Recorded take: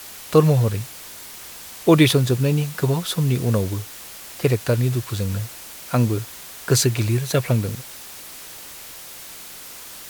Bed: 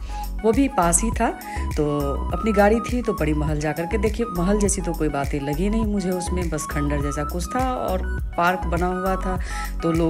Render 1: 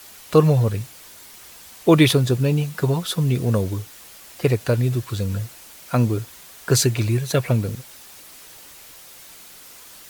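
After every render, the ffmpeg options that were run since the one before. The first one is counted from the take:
-af "afftdn=nr=6:nf=-39"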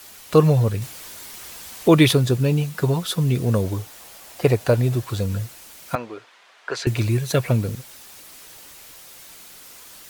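-filter_complex "[0:a]asettb=1/sr,asplit=3[a][b][c];[a]atrim=end=3.644[d];[b]atrim=start=3.64:end=5.26,asetpts=PTS-STARTPTS,afade=t=in:d=0.004:c=qsin,afade=t=out:st=1.616:d=0.004:c=qsin,equalizer=f=720:w=1.3:g=6.5[e];[c]atrim=start=5.256[f];[d][e]acrossfade=d=0.004:c1=hsin:c2=qsin[g];[g][f]acrossfade=d=0.004:c1=qsin:c2=hsin,asettb=1/sr,asplit=3[h][i][j];[h]atrim=end=5.954[k];[i]atrim=start=5.95:end=6.87,asetpts=PTS-STARTPTS,afade=t=in:d=0.004:c=qsin,afade=t=out:st=0.916:d=0.004:c=qsin,highpass=620,lowpass=2.8k[l];[j]atrim=start=6.866[m];[k][l]acrossfade=d=0.004:c1=hsin:c2=qsin[n];[n][m]acrossfade=d=0.004:c1=qsin:c2=hsin,asplit=3[o][p][q];[o]atrim=end=0.822[r];[p]atrim=start=0.818:end=1.882,asetpts=PTS-STARTPTS,volume=5dB[s];[q]atrim=start=1.878[t];[r][s]acrossfade=d=0.004:c1=hsin:c2=hsin[u];[u][t]acrossfade=d=0.004:c1=hsin:c2=hsin"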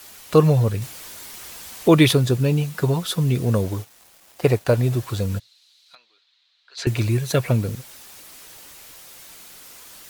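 -filter_complex "[0:a]asettb=1/sr,asplit=3[a][b][c];[a]atrim=end=3.644[d];[b]atrim=start=3.64:end=4.83,asetpts=PTS-STARTPTS,afade=t=in:d=0.004:c=qsin,afade=t=out:st=1.186:d=0.004:c=qsin,aeval=exprs='sgn(val(0))*max(abs(val(0))-0.0075,0)':c=same[e];[c]atrim=start=4.826[f];[d][e]acrossfade=d=0.004:c1=hsin:c2=qsin[g];[g][f]acrossfade=d=0.004:c1=qsin:c2=hsin,asplit=3[h][i][j];[h]afade=t=out:st=5.38:d=0.02[k];[i]bandpass=f=4k:t=q:w=6.2,afade=t=in:st=5.38:d=0.02,afade=t=out:st=6.77:d=0.02[l];[j]afade=t=in:st=6.77:d=0.02[m];[k][l][m]amix=inputs=3:normalize=0"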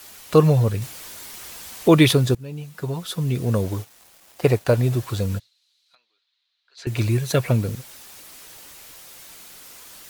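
-filter_complex "[0:a]asplit=4[a][b][c][d];[a]atrim=end=2.35,asetpts=PTS-STARTPTS,afade=t=out:st=2.346:d=0.004:c=hsin:silence=0.0891251[e];[b]atrim=start=2.35:end=5.51,asetpts=PTS-STARTPTS,afade=t=in:d=1.4:silence=0.0891251,afade=t=out:st=2.99:d=0.17:silence=0.316228[f];[c]atrim=start=5.51:end=6.83,asetpts=PTS-STARTPTS,volume=-10dB[g];[d]atrim=start=6.83,asetpts=PTS-STARTPTS,afade=t=in:d=0.17:silence=0.316228[h];[e][f][g][h]concat=n=4:v=0:a=1"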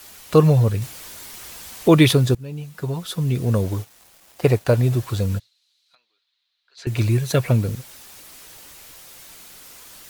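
-af "lowshelf=f=130:g=4"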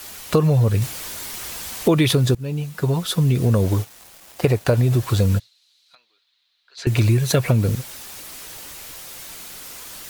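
-filter_complex "[0:a]asplit=2[a][b];[b]alimiter=limit=-13dB:level=0:latency=1,volume=0.5dB[c];[a][c]amix=inputs=2:normalize=0,acompressor=threshold=-13dB:ratio=6"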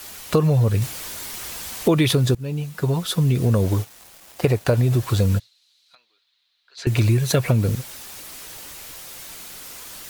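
-af "volume=-1dB"

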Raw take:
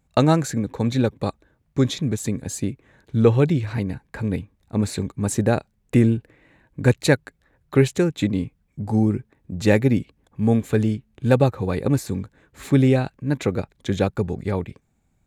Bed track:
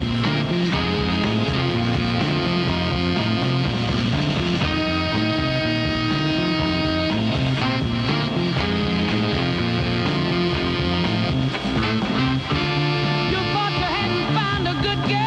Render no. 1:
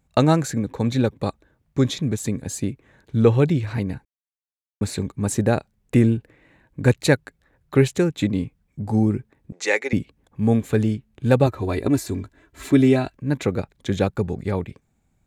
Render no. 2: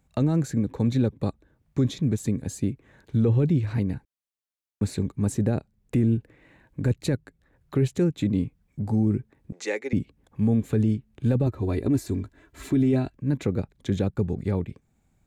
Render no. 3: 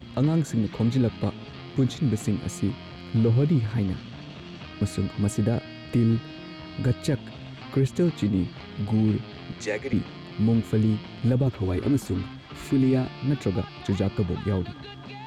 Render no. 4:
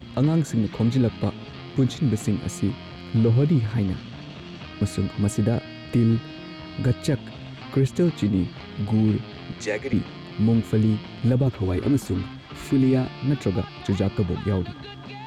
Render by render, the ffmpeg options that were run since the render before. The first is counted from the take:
-filter_complex "[0:a]asettb=1/sr,asplit=3[a][b][c];[a]atrim=end=9.524[d];[b]atrim=start=9.52:end=9.93,asetpts=PTS-STARTPTS,afade=t=in:d=0.004:c=qsin,afade=t=out:st=0.406:d=0.004:c=qsin,highpass=f=450:w=0.5412,highpass=f=450:w=1.3066,equalizer=f=620:t=q:w=4:g=-7,equalizer=f=2.1k:t=q:w=4:g=9,equalizer=f=6.2k:t=q:w=4:g=8,lowpass=f=9.4k:w=0.5412,lowpass=f=9.4k:w=1.3066[e];[c]atrim=start=9.926[f];[d][e]acrossfade=d=0.004:c1=hsin:c2=qsin[g];[g][f]acrossfade=d=0.004:c1=qsin:c2=hsin,asettb=1/sr,asplit=3[h][i][j];[h]atrim=end=11.464[k];[i]atrim=start=11.46:end=13.17,asetpts=PTS-STARTPTS,afade=t=in:d=0.004:c=qsin,afade=t=out:st=1.706:d=0.004:c=qsin,aecho=1:1:3:0.65,atrim=end_sample=75411[l];[j]atrim=start=13.166[m];[k][l]acrossfade=d=0.004:c1=hsin:c2=qsin[n];[n][m]acrossfade=d=0.004:c1=qsin:c2=hsin,asplit=3[o][p][q];[o]atrim=end=4.05,asetpts=PTS-STARTPTS,afade=t=out:st=4.046:d=0.004:c=hsin[r];[p]atrim=start=4.05:end=4.81,asetpts=PTS-STARTPTS,volume=0[s];[q]atrim=start=4.81,asetpts=PTS-STARTPTS,afade=t=in:d=0.004:c=hsin[t];[r][s][t]concat=n=3:v=0:a=1"
-filter_complex "[0:a]acrossover=split=410[a][b];[b]acompressor=threshold=-51dB:ratio=1.5[c];[a][c]amix=inputs=2:normalize=0,alimiter=limit=-14.5dB:level=0:latency=1:release=10"
-filter_complex "[1:a]volume=-19.5dB[a];[0:a][a]amix=inputs=2:normalize=0"
-af "volume=2dB"

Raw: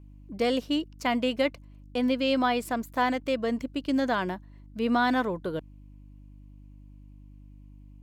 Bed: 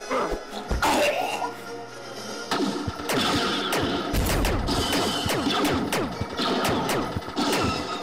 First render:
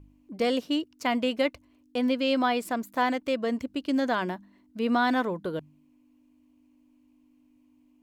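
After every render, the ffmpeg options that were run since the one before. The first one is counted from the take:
-af "bandreject=f=50:t=h:w=4,bandreject=f=100:t=h:w=4,bandreject=f=150:t=h:w=4,bandreject=f=200:t=h:w=4"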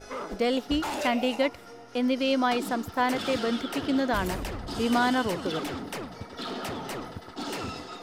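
-filter_complex "[1:a]volume=-10.5dB[a];[0:a][a]amix=inputs=2:normalize=0"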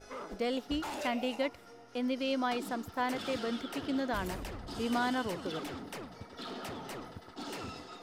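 -af "volume=-7.5dB"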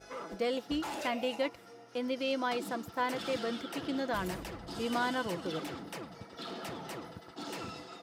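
-af "highpass=60,aecho=1:1:6:0.36"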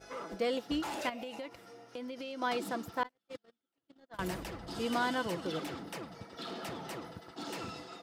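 -filter_complex "[0:a]asettb=1/sr,asplit=3[a][b][c];[a]atrim=end=1.094[d];[b]atrim=start=1.09:end=2.42,asetpts=PTS-STARTPTS,afade=t=in:d=0.004:c=qsin,afade=t=out:st=1.326:d=0.004:c=qsin,acompressor=threshold=-38dB:ratio=10:attack=3.2:release=140:knee=1:detection=peak[e];[c]atrim=start=2.416[f];[d][e]acrossfade=d=0.004:c1=hsin:c2=qsin[g];[g][f]acrossfade=d=0.004:c1=qsin:c2=hsin,asettb=1/sr,asplit=3[h][i][j];[h]atrim=end=3.034[k];[i]atrim=start=3.03:end=4.19,asetpts=PTS-STARTPTS,afade=t=in:d=0.004:c=qsin,afade=t=out:st=1.156:d=0.004:c=qsin,agate=range=-50dB:threshold=-30dB:ratio=16:release=100:detection=peak[l];[j]atrim=start=4.186[m];[k][l]acrossfade=d=0.004:c1=hsin:c2=qsin[n];[n][m]acrossfade=d=0.004:c1=qsin:c2=hsin"

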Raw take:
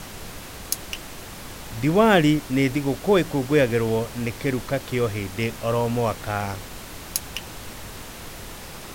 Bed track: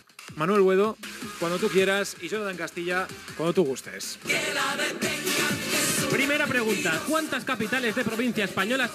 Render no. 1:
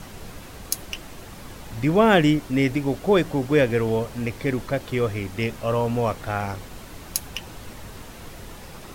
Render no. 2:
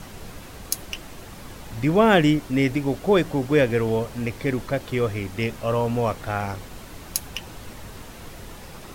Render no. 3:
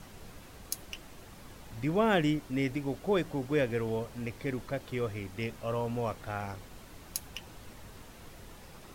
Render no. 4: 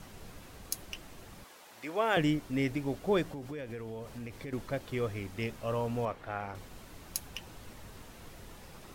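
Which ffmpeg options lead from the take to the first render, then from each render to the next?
-af "afftdn=nr=6:nf=-39"
-af anull
-af "volume=-10dB"
-filter_complex "[0:a]asettb=1/sr,asplit=3[a][b][c];[a]atrim=end=1.444[d];[b]atrim=start=1.44:end=2.17,asetpts=PTS-STARTPTS,afade=t=in:d=0.004:c=qsin,afade=t=out:st=0.726:d=0.004:c=qsin,highpass=520[e];[c]atrim=start=2.166[f];[d][e]acrossfade=d=0.004:c1=hsin:c2=qsin[g];[g][f]acrossfade=d=0.004:c1=qsin:c2=hsin,asettb=1/sr,asplit=3[h][i][j];[h]atrim=end=3.294[k];[i]atrim=start=3.29:end=4.53,asetpts=PTS-STARTPTS,afade=t=in:d=0.004:c=qsin,afade=t=out:st=1.236:d=0.004:c=qsin,acompressor=threshold=-38dB:ratio=5:attack=3.2:release=140:knee=1:detection=peak[l];[j]atrim=start=4.526[m];[k][l]acrossfade=d=0.004:c1=hsin:c2=qsin[n];[n][m]acrossfade=d=0.004:c1=qsin:c2=hsin,asettb=1/sr,asplit=3[o][p][q];[o]atrim=end=6.054[r];[p]atrim=start=6.05:end=6.55,asetpts=PTS-STARTPTS,afade=t=in:d=0.004:c=qsin,afade=t=out:st=0.496:d=0.004:c=qsin,bass=f=250:g=-6,treble=f=4k:g=-12[s];[q]atrim=start=6.546[t];[r][s]acrossfade=d=0.004:c1=hsin:c2=qsin[u];[u][t]acrossfade=d=0.004:c1=qsin:c2=hsin"

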